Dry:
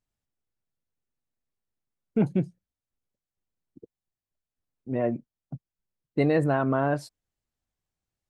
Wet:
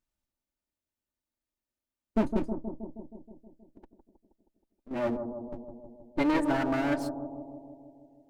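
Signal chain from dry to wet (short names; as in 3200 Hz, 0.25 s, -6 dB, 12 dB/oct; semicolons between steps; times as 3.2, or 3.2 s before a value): minimum comb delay 3.3 ms; 2.46–4.91 compressor, threshold -49 dBFS, peak gain reduction 11 dB; on a send: analogue delay 0.158 s, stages 1024, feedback 67%, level -7 dB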